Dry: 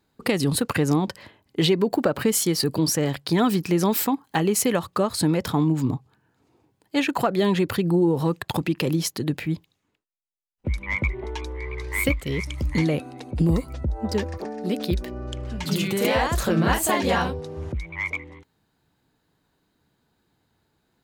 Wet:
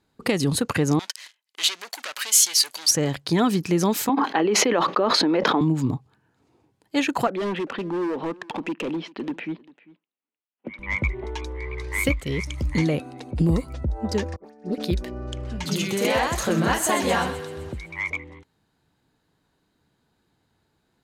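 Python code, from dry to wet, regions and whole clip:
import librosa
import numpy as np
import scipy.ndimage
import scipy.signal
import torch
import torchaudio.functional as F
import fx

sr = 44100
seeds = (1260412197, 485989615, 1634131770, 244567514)

y = fx.chain(x, sr, fx.leveller(passes=3),
    fx.bessel_highpass(hz=3000.0, order=2), at=(0.99, 2.91))
y = fx.chain(y, sr, fx.highpass(hz=270.0, slope=24),
    fx.air_absorb(metres=280.0),
    fx.env_flatten(amount_pct=100), at=(4.09, 5.61))
y = fx.chain(y, sr, fx.cheby1_bandpass(low_hz=230.0, high_hz=3000.0, order=3),
    fx.clip_hard(threshold_db=-23.5),
    fx.echo_single(ms=396, db=-21.5), at=(7.27, 10.79))
y = fx.chain(y, sr, fx.dispersion(late='highs', ms=82.0, hz=1600.0),
    fx.upward_expand(threshold_db=-37.0, expansion=2.5), at=(14.36, 14.78))
y = fx.chain(y, sr, fx.low_shelf(hz=84.0, db=-10.5),
    fx.echo_thinned(ms=128, feedback_pct=61, hz=1000.0, wet_db=-11), at=(15.66, 18.1))
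y = scipy.signal.sosfilt(scipy.signal.butter(2, 12000.0, 'lowpass', fs=sr, output='sos'), y)
y = fx.dynamic_eq(y, sr, hz=6400.0, q=6.7, threshold_db=-53.0, ratio=4.0, max_db=7)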